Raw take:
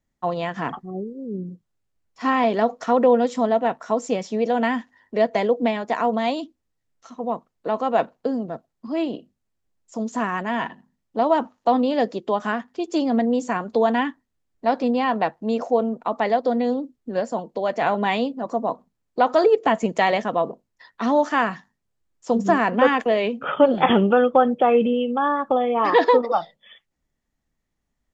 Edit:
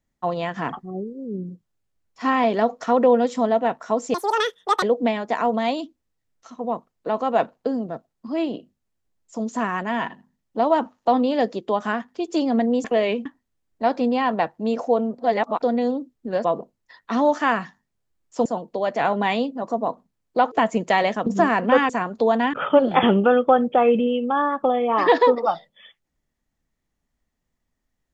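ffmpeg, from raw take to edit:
-filter_complex "[0:a]asplit=13[s0][s1][s2][s3][s4][s5][s6][s7][s8][s9][s10][s11][s12];[s0]atrim=end=4.144[s13];[s1]atrim=start=4.14:end=5.42,asetpts=PTS-STARTPTS,asetrate=82467,aresample=44100,atrim=end_sample=30186,asetpts=PTS-STARTPTS[s14];[s2]atrim=start=5.416:end=13.442[s15];[s3]atrim=start=22.988:end=23.402[s16];[s4]atrim=start=14.078:end=16.012[s17];[s5]atrim=start=16.008:end=16.452,asetpts=PTS-STARTPTS,areverse[s18];[s6]atrim=start=16.448:end=17.272[s19];[s7]atrim=start=20.348:end=22.362[s20];[s8]atrim=start=17.268:end=19.332[s21];[s9]atrim=start=19.598:end=20.352[s22];[s10]atrim=start=22.358:end=22.992[s23];[s11]atrim=start=13.438:end=14.082[s24];[s12]atrim=start=23.398[s25];[s13][s14]acrossfade=d=0.004:c1=hsin:c2=hsin[s26];[s26][s15]acrossfade=d=0.004:c1=hsin:c2=hsin[s27];[s27][s16]acrossfade=d=0.004:c1=hsin:c2=hsin[s28];[s28][s17]acrossfade=d=0.004:c1=hsin:c2=hsin[s29];[s29][s18]acrossfade=d=0.004:c1=hsin:c2=hsin[s30];[s30][s19]acrossfade=d=0.004:c1=hsin:c2=hsin[s31];[s31][s20]acrossfade=d=0.004:c1=hsin:c2=hsin[s32];[s32][s21]acrossfade=d=0.004:c1=hsin:c2=hsin[s33];[s33][s22]acrossfade=d=0.004:c1=hsin:c2=hsin[s34];[s34][s23]acrossfade=d=0.004:c1=hsin:c2=hsin[s35];[s35][s24]acrossfade=d=0.004:c1=hsin:c2=hsin[s36];[s36][s25]acrossfade=d=0.004:c1=hsin:c2=hsin"

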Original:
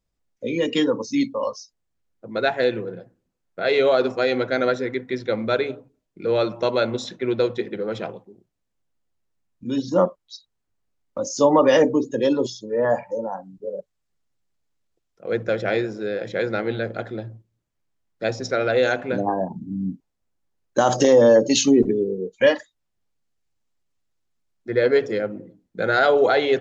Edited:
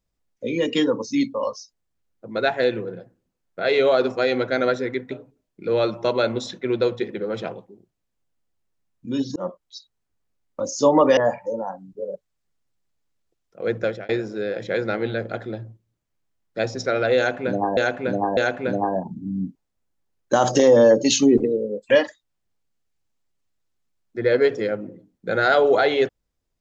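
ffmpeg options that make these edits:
-filter_complex "[0:a]asplit=9[s0][s1][s2][s3][s4][s5][s6][s7][s8];[s0]atrim=end=5.112[s9];[s1]atrim=start=5.688:end=9.94,asetpts=PTS-STARTPTS,afade=t=out:st=4.248:d=0.004:c=hsin[s10];[s2]atrim=start=9.94:end=11.752,asetpts=PTS-STARTPTS,afade=t=in:d=0.27[s11];[s3]atrim=start=12.818:end=15.74,asetpts=PTS-STARTPTS,afade=t=out:st=2.672:d=0.25[s12];[s4]atrim=start=15.74:end=19.422,asetpts=PTS-STARTPTS,afade=t=in:d=0.004:c=hsin[s13];[s5]atrim=start=18.818:end=19.422[s14];[s6]atrim=start=18.818:end=21.844[s15];[s7]atrim=start=21.84:end=22.42,asetpts=PTS-STARTPTS,asetrate=49392,aresample=44100,atrim=end_sample=22837,asetpts=PTS-STARTPTS[s16];[s8]atrim=start=22.416[s17];[s10][s11]concat=n=2:v=0:a=1[s18];[s9][s18]acrossfade=d=0.004:c1=hsin:c2=hsin[s19];[s12][s13]concat=n=2:v=0:a=1[s20];[s19][s20]acrossfade=d=0.004:c1=hsin:c2=hsin[s21];[s21][s14]acrossfade=d=0.004:c1=hsin:c2=hsin[s22];[s22][s15]acrossfade=d=0.004:c1=hsin:c2=hsin[s23];[s23][s16]acrossfade=d=0.004:c1=hsin:c2=hsin[s24];[s24][s17]acrossfade=d=0.004:c1=hsin:c2=hsin"

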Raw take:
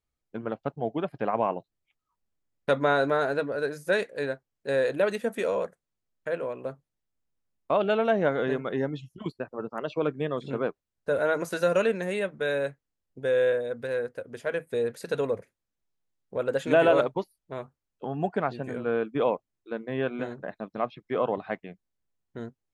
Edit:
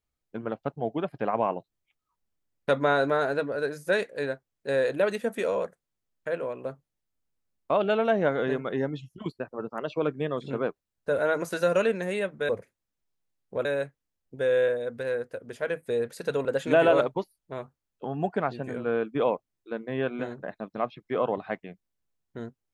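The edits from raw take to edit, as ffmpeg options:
-filter_complex "[0:a]asplit=4[s0][s1][s2][s3];[s0]atrim=end=12.492[s4];[s1]atrim=start=15.288:end=16.452[s5];[s2]atrim=start=12.488:end=15.292[s6];[s3]atrim=start=16.448[s7];[s4][s5]acrossfade=d=0.004:c1=hsin:c2=hsin[s8];[s8][s6]acrossfade=d=0.004:c1=hsin:c2=hsin[s9];[s9][s7]acrossfade=d=0.004:c1=hsin:c2=hsin"

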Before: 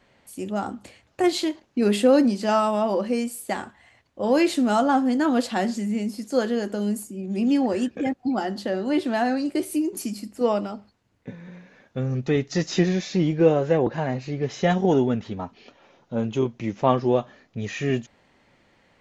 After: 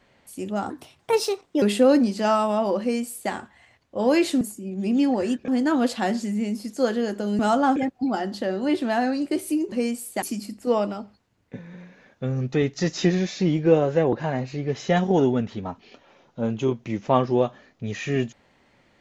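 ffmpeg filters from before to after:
-filter_complex "[0:a]asplit=9[s0][s1][s2][s3][s4][s5][s6][s7][s8];[s0]atrim=end=0.704[s9];[s1]atrim=start=0.7:end=1.86,asetpts=PTS-STARTPTS,asetrate=55566,aresample=44100[s10];[s2]atrim=start=1.856:end=4.652[s11];[s3]atrim=start=6.928:end=8.002[s12];[s4]atrim=start=5.018:end=6.932[s13];[s5]atrim=start=4.648:end=5.022[s14];[s6]atrim=start=7.998:end=9.962[s15];[s7]atrim=start=3.048:end=3.552[s16];[s8]atrim=start=9.958[s17];[s9][s10]acrossfade=d=0.004:c1=hsin:c2=hsin[s18];[s18][s11]acrossfade=d=0.004:c1=hsin:c2=hsin[s19];[s19][s12]acrossfade=d=0.004:c1=hsin:c2=hsin[s20];[s20][s13]acrossfade=d=0.004:c1=hsin:c2=hsin[s21];[s21][s14]acrossfade=d=0.004:c1=hsin:c2=hsin[s22];[s22][s15]acrossfade=d=0.004:c1=hsin:c2=hsin[s23];[s23][s16]acrossfade=d=0.004:c1=hsin:c2=hsin[s24];[s24][s17]acrossfade=d=0.004:c1=hsin:c2=hsin"

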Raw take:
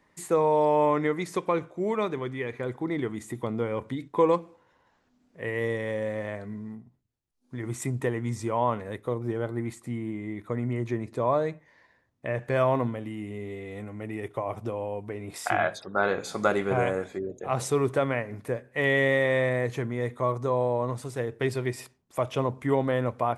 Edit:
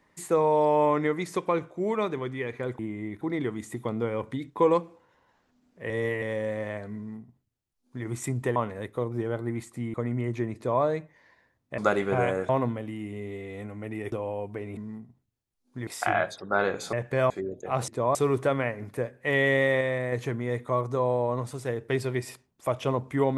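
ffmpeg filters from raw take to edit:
-filter_complex "[0:a]asplit=18[s0][s1][s2][s3][s4][s5][s6][s7][s8][s9][s10][s11][s12][s13][s14][s15][s16][s17];[s0]atrim=end=2.792[s18];[s1]atrim=start=10.038:end=10.462[s19];[s2]atrim=start=2.788:end=5.482[s20];[s3]atrim=start=5.478:end=5.802,asetpts=PTS-STARTPTS,areverse[s21];[s4]atrim=start=5.798:end=8.142[s22];[s5]atrim=start=8.658:end=10.042[s23];[s6]atrim=start=10.458:end=12.302[s24];[s7]atrim=start=16.368:end=17.082[s25];[s8]atrim=start=12.668:end=14.302[s26];[s9]atrim=start=14.658:end=15.312[s27];[s10]atrim=start=6.538:end=7.642[s28];[s11]atrim=start=15.308:end=16.372[s29];[s12]atrim=start=12.298:end=12.672[s30];[s13]atrim=start=17.078:end=17.662[s31];[s14]atrim=start=11.078:end=11.352[s32];[s15]atrim=start=17.658:end=19.322[s33];[s16]atrim=start=19.318:end=19.632,asetpts=PTS-STARTPTS,volume=0.668[s34];[s17]atrim=start=19.628[s35];[s18][s19]acrossfade=d=0.004:c1=hsin:c2=hsin[s36];[s36][s20]acrossfade=d=0.004:c1=hsin:c2=hsin[s37];[s37][s21]acrossfade=d=0.004:c1=hsin:c2=hsin[s38];[s38][s22]acrossfade=d=0.004:c1=hsin:c2=hsin[s39];[s39][s23]acrossfade=d=0.004:c1=hsin:c2=hsin[s40];[s40][s24]acrossfade=d=0.004:c1=hsin:c2=hsin[s41];[s41][s25]acrossfade=d=0.004:c1=hsin:c2=hsin[s42];[s42][s26]acrossfade=d=0.004:c1=hsin:c2=hsin[s43];[s43][s27]acrossfade=d=0.004:c1=hsin:c2=hsin[s44];[s44][s28]acrossfade=d=0.004:c1=hsin:c2=hsin[s45];[s45][s29]acrossfade=d=0.004:c1=hsin:c2=hsin[s46];[s46][s30]acrossfade=d=0.004:c1=hsin:c2=hsin[s47];[s47][s31]acrossfade=d=0.004:c1=hsin:c2=hsin[s48];[s48][s32]acrossfade=d=0.004:c1=hsin:c2=hsin[s49];[s49][s33]acrossfade=d=0.004:c1=hsin:c2=hsin[s50];[s50][s34]acrossfade=d=0.004:c1=hsin:c2=hsin[s51];[s51][s35]acrossfade=d=0.004:c1=hsin:c2=hsin"

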